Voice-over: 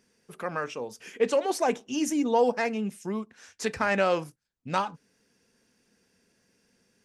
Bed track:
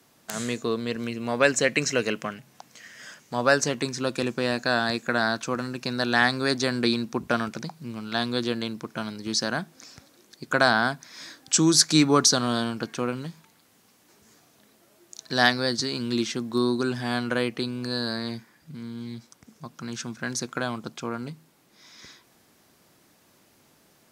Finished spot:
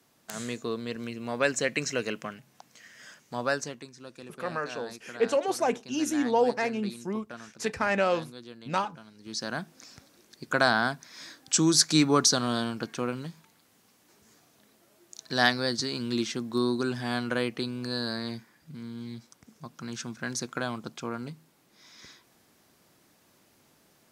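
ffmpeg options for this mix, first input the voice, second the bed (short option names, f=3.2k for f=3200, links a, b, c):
-filter_complex "[0:a]adelay=4000,volume=-1dB[a];[1:a]volume=10dB,afade=t=out:st=3.34:d=0.53:silence=0.223872,afade=t=in:st=9.14:d=0.56:silence=0.16788[b];[a][b]amix=inputs=2:normalize=0"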